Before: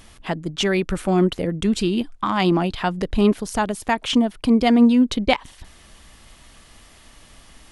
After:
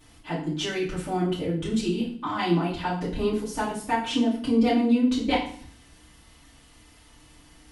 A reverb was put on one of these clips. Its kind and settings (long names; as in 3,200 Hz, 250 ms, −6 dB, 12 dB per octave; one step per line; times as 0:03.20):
feedback delay network reverb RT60 0.5 s, low-frequency decay 1.5×, high-frequency decay 0.95×, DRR −9.5 dB
level −15.5 dB